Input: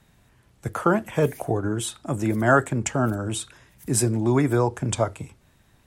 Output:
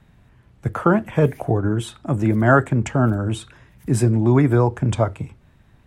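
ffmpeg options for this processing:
-af "bass=f=250:g=5,treble=f=4000:g=-11,volume=1.33"

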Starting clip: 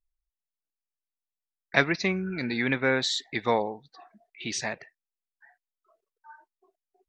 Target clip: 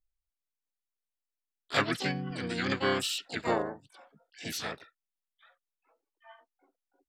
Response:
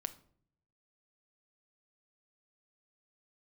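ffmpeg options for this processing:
-filter_complex "[0:a]asplit=4[s0][s1][s2][s3];[s1]asetrate=33038,aresample=44100,atempo=1.33484,volume=1[s4];[s2]asetrate=58866,aresample=44100,atempo=0.749154,volume=0.447[s5];[s3]asetrate=88200,aresample=44100,atempo=0.5,volume=0.631[s6];[s0][s4][s5][s6]amix=inputs=4:normalize=0,volume=0.376"

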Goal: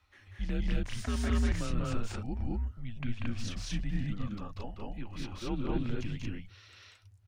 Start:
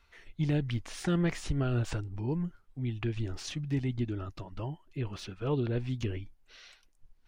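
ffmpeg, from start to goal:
-af "aecho=1:1:189.5|224.5:0.794|1,afreqshift=-110,volume=0.631"

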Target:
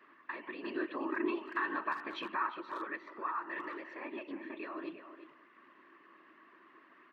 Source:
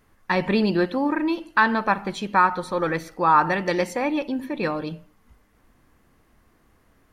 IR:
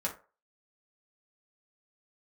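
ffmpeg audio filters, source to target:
-filter_complex "[0:a]highshelf=f=2100:g=-8,acompressor=threshold=0.0141:ratio=5,alimiter=level_in=3.35:limit=0.0631:level=0:latency=1:release=307,volume=0.299,asettb=1/sr,asplit=3[s0][s1][s2];[s0]atrim=end=0.654[s3];[s1]atrim=start=0.65:end=2.51,asetpts=PTS-STARTPTS,afade=t=in:d=0.004:c=qsin,afade=t=out:st=1.856:d=0.004:c=qsin,acontrast=29[s4];[s2]atrim=start=2.506[s5];[s3][s4]acrossfade=d=0.004:c1=hsin:c2=qsin[s6];[s6][s5]acrossfade=d=0.004:c1=qsin:c2=hsin,afftfilt=real='hypot(re,im)*cos(2*PI*random(0))':imag='hypot(re,im)*sin(2*PI*random(1))':win_size=512:overlap=0.75,aeval=exprs='val(0)+0.000501*(sin(2*PI*50*n/s)+sin(2*PI*2*50*n/s)/2+sin(2*PI*3*50*n/s)/3+sin(2*PI*4*50*n/s)/4+sin(2*PI*5*50*n/s)/5)':c=same,highpass=f=320:w=0.5412,highpass=f=320:w=1.3066,equalizer=f=330:t=q:w=4:g=7,equalizer=f=480:t=q:w=4:g=-10,equalizer=f=780:t=q:w=4:g=-10,equalizer=f=1100:t=q:w=4:g=10,equalizer=f=1800:t=q:w=4:g=9,equalizer=f=2700:t=q:w=4:g=7,lowpass=f=4000:w=0.5412,lowpass=f=4000:w=1.3066,asplit=2[s7][s8];[s8]adelay=350,highpass=300,lowpass=3400,asoftclip=type=hard:threshold=0.0141,volume=0.316[s9];[s7][s9]amix=inputs=2:normalize=0,volume=2.51"

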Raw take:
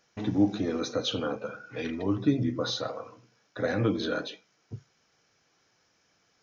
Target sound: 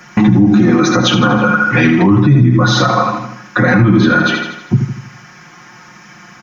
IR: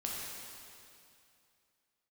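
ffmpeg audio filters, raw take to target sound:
-filter_complex "[0:a]equalizer=f=125:t=o:w=1:g=6,equalizer=f=250:t=o:w=1:g=9,equalizer=f=500:t=o:w=1:g=-9,equalizer=f=1000:t=o:w=1:g=8,equalizer=f=2000:t=o:w=1:g=7,equalizer=f=4000:t=o:w=1:g=-7,aecho=1:1:80|160|240|320|400|480:0.376|0.184|0.0902|0.0442|0.0217|0.0106,acrossover=split=120[s0][s1];[s1]acompressor=threshold=0.02:ratio=2.5[s2];[s0][s2]amix=inputs=2:normalize=0,aecho=1:1:5.6:0.94,alimiter=level_in=17.8:limit=0.891:release=50:level=0:latency=1,volume=0.891"

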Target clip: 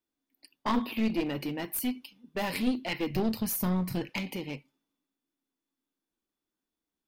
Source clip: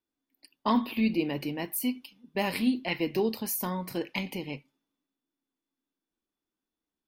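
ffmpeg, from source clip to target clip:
-filter_complex "[0:a]asplit=3[s0][s1][s2];[s0]afade=t=out:st=3.09:d=0.02[s3];[s1]asubboost=boost=7.5:cutoff=170,afade=t=in:st=3.09:d=0.02,afade=t=out:st=4.09:d=0.02[s4];[s2]afade=t=in:st=4.09:d=0.02[s5];[s3][s4][s5]amix=inputs=3:normalize=0,aeval=exprs='clip(val(0),-1,0.0376)':c=same"

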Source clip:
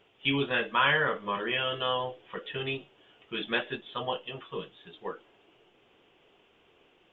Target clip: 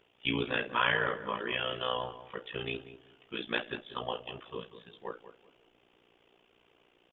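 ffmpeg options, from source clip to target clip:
-filter_complex "[0:a]tremolo=f=59:d=0.857,asplit=2[s0][s1];[s1]adelay=190,lowpass=f=1400:p=1,volume=0.251,asplit=2[s2][s3];[s3]adelay=190,lowpass=f=1400:p=1,volume=0.26,asplit=2[s4][s5];[s5]adelay=190,lowpass=f=1400:p=1,volume=0.26[s6];[s0][s2][s4][s6]amix=inputs=4:normalize=0"

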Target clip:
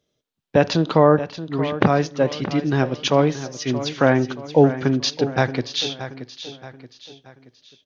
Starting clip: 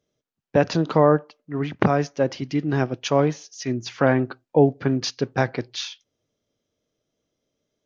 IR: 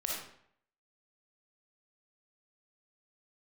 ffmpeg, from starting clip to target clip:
-filter_complex "[0:a]equalizer=f=3600:w=2:g=6.5,aecho=1:1:627|1254|1881|2508:0.237|0.102|0.0438|0.0189,asplit=2[s0][s1];[1:a]atrim=start_sample=2205,asetrate=61740,aresample=44100,highshelf=f=4300:g=-11[s2];[s1][s2]afir=irnorm=-1:irlink=0,volume=0.126[s3];[s0][s3]amix=inputs=2:normalize=0,volume=1.19"

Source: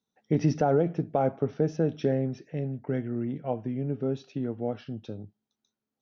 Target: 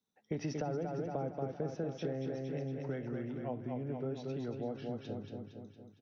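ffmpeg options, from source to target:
-filter_complex "[0:a]aecho=1:1:230|460|690|920|1150|1380|1610:0.531|0.287|0.155|0.0836|0.0451|0.0244|0.0132,acrossover=split=170|450[s0][s1][s2];[s0]acompressor=threshold=0.00891:ratio=4[s3];[s1]acompressor=threshold=0.01:ratio=4[s4];[s2]acompressor=threshold=0.0141:ratio=4[s5];[s3][s4][s5]amix=inputs=3:normalize=0,volume=0.668"

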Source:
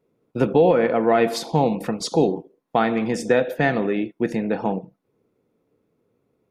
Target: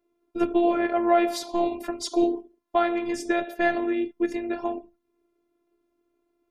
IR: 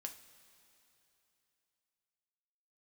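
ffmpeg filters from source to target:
-af "bandreject=f=60:t=h:w=6,bandreject=f=120:t=h:w=6,bandreject=f=180:t=h:w=6,afftfilt=real='hypot(re,im)*cos(PI*b)':imag='0':win_size=512:overlap=0.75"

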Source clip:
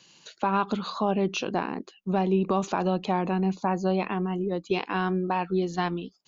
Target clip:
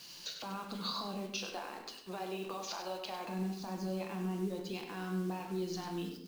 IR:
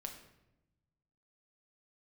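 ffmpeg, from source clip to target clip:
-filter_complex "[0:a]asplit=3[s0][s1][s2];[s0]afade=t=out:st=1.25:d=0.02[s3];[s1]highpass=630,afade=t=in:st=1.25:d=0.02,afade=t=out:st=3.28:d=0.02[s4];[s2]afade=t=in:st=3.28:d=0.02[s5];[s3][s4][s5]amix=inputs=3:normalize=0,acompressor=threshold=0.0178:ratio=2.5,alimiter=level_in=2.24:limit=0.0631:level=0:latency=1:release=120,volume=0.447,lowpass=f=5200:t=q:w=3.9,acrusher=bits=8:mix=0:aa=0.000001,aecho=1:1:99:0.335[s6];[1:a]atrim=start_sample=2205,afade=t=out:st=0.38:d=0.01,atrim=end_sample=17199[s7];[s6][s7]afir=irnorm=-1:irlink=0,volume=1.33"

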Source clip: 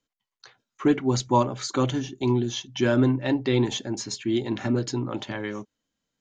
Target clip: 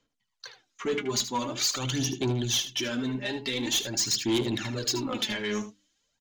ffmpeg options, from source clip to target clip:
-filter_complex "[0:a]lowpass=7100,highshelf=f=4100:g=7,bandreject=f=50:t=h:w=6,bandreject=f=100:t=h:w=6,bandreject=f=150:t=h:w=6,bandreject=f=200:t=h:w=6,bandreject=f=250:t=h:w=6,bandreject=f=300:t=h:w=6,bandreject=f=350:t=h:w=6,areverse,acompressor=threshold=0.0631:ratio=6,areverse,alimiter=limit=0.0841:level=0:latency=1:release=401,acrossover=split=2000[s0][s1];[s1]dynaudnorm=f=520:g=3:m=3.35[s2];[s0][s2]amix=inputs=2:normalize=0,aphaser=in_gain=1:out_gain=1:delay=4.9:decay=0.64:speed=0.46:type=sinusoidal,asoftclip=type=tanh:threshold=0.0891,aecho=1:1:77:0.251"

